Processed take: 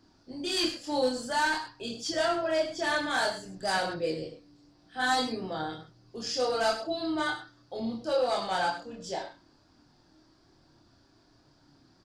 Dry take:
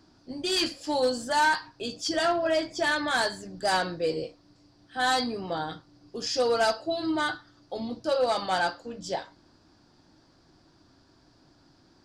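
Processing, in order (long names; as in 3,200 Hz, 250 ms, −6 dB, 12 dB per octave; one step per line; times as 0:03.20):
loudspeakers that aren't time-aligned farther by 12 metres −10 dB, 34 metres −11 dB
multi-voice chorus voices 2, 0.51 Hz, delay 27 ms, depth 1.6 ms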